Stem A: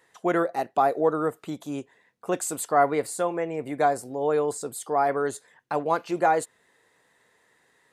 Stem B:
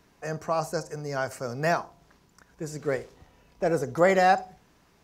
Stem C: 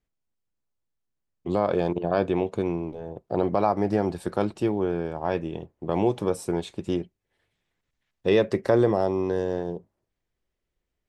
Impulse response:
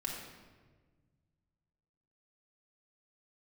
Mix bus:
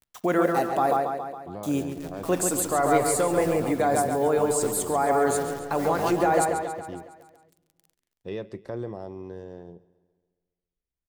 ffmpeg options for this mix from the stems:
-filter_complex "[0:a]acrusher=bits=8:mix=0:aa=0.000001,volume=1.26,asplit=3[s0][s1][s2];[s0]atrim=end=0.97,asetpts=PTS-STARTPTS,afade=t=out:st=0.966:d=0.004:c=hsin[s3];[s1]atrim=start=0.97:end=1.63,asetpts=PTS-STARTPTS,volume=0[s4];[s2]atrim=start=1.63,asetpts=PTS-STARTPTS,afade=t=in:d=0.004:c=hsin[s5];[s3][s4][s5]concat=n=3:v=0:a=1,asplit=3[s6][s7][s8];[s7]volume=0.188[s9];[s8]volume=0.447[s10];[1:a]acrusher=bits=5:dc=4:mix=0:aa=0.000001,adelay=1750,volume=0.133,asplit=2[s11][s12];[s12]volume=0.562[s13];[2:a]volume=0.168,asplit=2[s14][s15];[s15]volume=0.0891[s16];[s6][s11]amix=inputs=2:normalize=0,highshelf=f=6400:g=9,alimiter=limit=0.133:level=0:latency=1,volume=1[s17];[3:a]atrim=start_sample=2205[s18];[s9][s18]afir=irnorm=-1:irlink=0[s19];[s10][s13][s16]amix=inputs=3:normalize=0,aecho=0:1:138|276|414|552|690|828|966|1104:1|0.56|0.314|0.176|0.0983|0.0551|0.0308|0.0173[s20];[s14][s17][s19][s20]amix=inputs=4:normalize=0,lowshelf=f=210:g=7"

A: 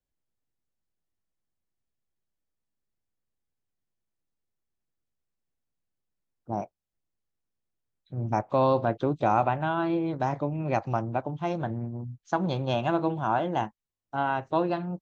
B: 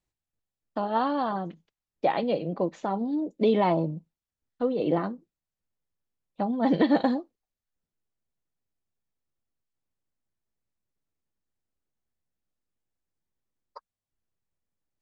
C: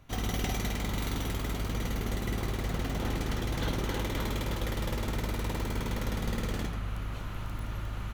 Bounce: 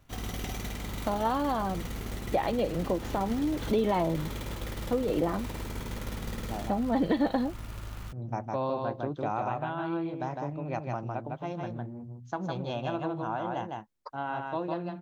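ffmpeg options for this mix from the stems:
-filter_complex "[0:a]volume=0.447,asplit=2[s0][s1];[s1]volume=0.668[s2];[1:a]adelay=300,volume=1.19[s3];[2:a]acrusher=bits=3:mode=log:mix=0:aa=0.000001,volume=0.596[s4];[s2]aecho=0:1:156:1[s5];[s0][s3][s4][s5]amix=inputs=4:normalize=0,acompressor=threshold=0.0447:ratio=2"

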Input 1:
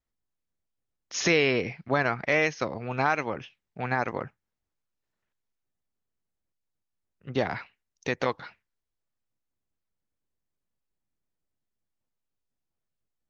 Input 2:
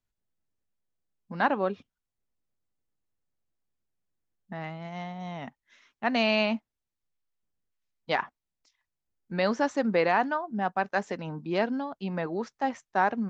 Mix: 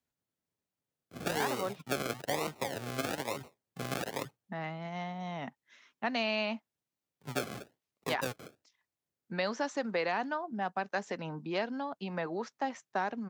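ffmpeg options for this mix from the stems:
-filter_complex "[0:a]aemphasis=mode=reproduction:type=75fm,aecho=1:1:7.3:0.49,acrusher=samples=37:mix=1:aa=0.000001:lfo=1:lforange=22.2:lforate=1.1,volume=0.708[s0];[1:a]volume=0.944[s1];[s0][s1]amix=inputs=2:normalize=0,acrossover=split=520|3000[s2][s3][s4];[s2]acompressor=threshold=0.0126:ratio=4[s5];[s3]acompressor=threshold=0.0224:ratio=4[s6];[s4]acompressor=threshold=0.0126:ratio=4[s7];[s5][s6][s7]amix=inputs=3:normalize=0,highpass=110"

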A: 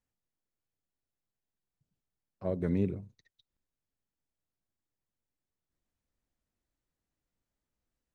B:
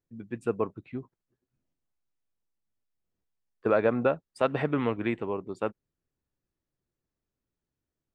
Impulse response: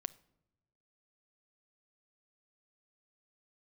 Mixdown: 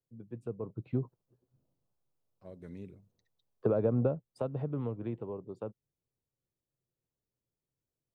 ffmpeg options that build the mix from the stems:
-filter_complex "[0:a]highshelf=f=3000:g=9.5,volume=0.15[s0];[1:a]equalizer=f=125:t=o:w=1:g=11,equalizer=f=500:t=o:w=1:g=9,equalizer=f=1000:t=o:w=1:g=4,equalizer=f=2000:t=o:w=1:g=-11,equalizer=f=8000:t=o:w=1:g=-5,acrossover=split=290[s1][s2];[s2]acompressor=threshold=0.0251:ratio=2.5[s3];[s1][s3]amix=inputs=2:normalize=0,afade=t=in:st=0.62:d=0.3:silence=0.237137,afade=t=out:st=4.03:d=0.5:silence=0.281838[s4];[s0][s4]amix=inputs=2:normalize=0,acompressor=threshold=0.0447:ratio=2"

